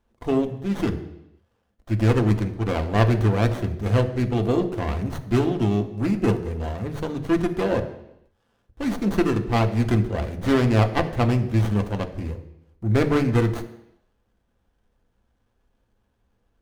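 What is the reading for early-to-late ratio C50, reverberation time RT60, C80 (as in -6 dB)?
12.0 dB, 0.85 s, 14.0 dB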